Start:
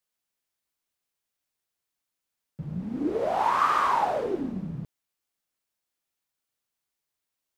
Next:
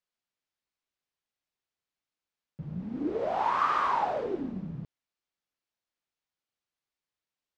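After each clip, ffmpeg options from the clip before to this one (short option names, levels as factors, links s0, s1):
-af "lowpass=5200,volume=0.668"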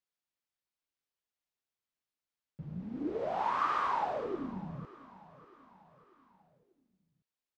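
-af "aecho=1:1:593|1186|1779|2372:0.106|0.0561|0.0298|0.0158,volume=0.596"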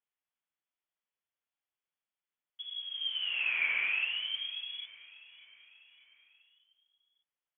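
-af "lowpass=f=3000:t=q:w=0.5098,lowpass=f=3000:t=q:w=0.6013,lowpass=f=3000:t=q:w=0.9,lowpass=f=3000:t=q:w=2.563,afreqshift=-3500"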